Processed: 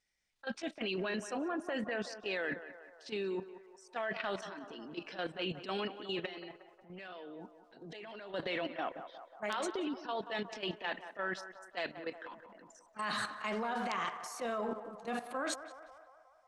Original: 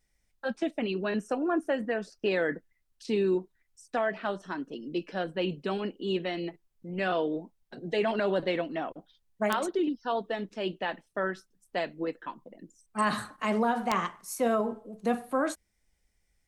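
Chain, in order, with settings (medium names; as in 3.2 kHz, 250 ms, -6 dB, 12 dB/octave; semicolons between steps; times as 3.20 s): low-pass 4.6 kHz 12 dB/octave; tilt EQ +3 dB/octave; 6.18–8.33 s: compression, threshold -37 dBFS, peak gain reduction 11 dB; transient shaper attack -8 dB, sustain +7 dB; level held to a coarse grid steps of 12 dB; band-passed feedback delay 181 ms, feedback 67%, band-pass 870 Hz, level -10 dB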